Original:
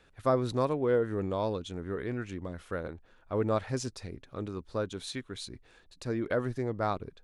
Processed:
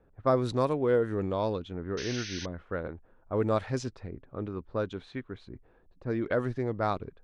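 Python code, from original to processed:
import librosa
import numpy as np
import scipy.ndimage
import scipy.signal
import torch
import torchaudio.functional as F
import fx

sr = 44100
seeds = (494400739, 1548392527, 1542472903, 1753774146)

y = fx.env_lowpass(x, sr, base_hz=740.0, full_db=-24.0)
y = fx.spec_paint(y, sr, seeds[0], shape='noise', start_s=1.97, length_s=0.49, low_hz=1400.0, high_hz=6400.0, level_db=-42.0)
y = F.gain(torch.from_numpy(y), 1.5).numpy()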